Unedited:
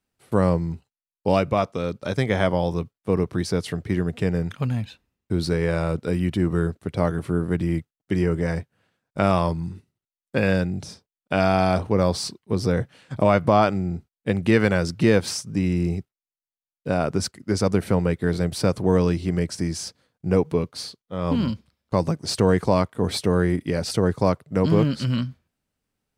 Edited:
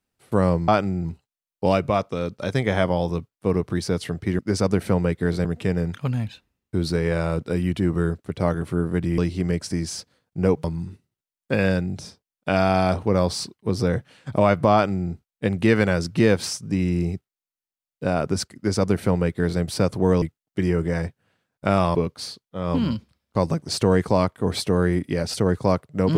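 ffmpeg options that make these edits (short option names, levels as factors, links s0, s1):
-filter_complex "[0:a]asplit=9[s0][s1][s2][s3][s4][s5][s6][s7][s8];[s0]atrim=end=0.682[s9];[s1]atrim=start=13.568:end=13.942[s10];[s2]atrim=start=0.678:end=4.022[s11];[s3]atrim=start=17.398:end=18.462[s12];[s4]atrim=start=4.018:end=7.752[s13];[s5]atrim=start=19.058:end=20.522[s14];[s6]atrim=start=9.478:end=19.062[s15];[s7]atrim=start=7.748:end=9.482[s16];[s8]atrim=start=20.518[s17];[s9][s10]acrossfade=d=0.004:c1=hsin:c2=hsin[s18];[s18][s11]acrossfade=d=0.004:c1=hsin:c2=hsin[s19];[s19][s12]acrossfade=d=0.004:c1=hsin:c2=hsin[s20];[s20][s13]acrossfade=d=0.004:c1=hsin:c2=hsin[s21];[s21][s14]acrossfade=d=0.004:c1=hsin:c2=hsin[s22];[s22][s15]acrossfade=d=0.004:c1=hsin:c2=hsin[s23];[s23][s16]acrossfade=d=0.004:c1=hsin:c2=hsin[s24];[s24][s17]acrossfade=d=0.004:c1=hsin:c2=hsin"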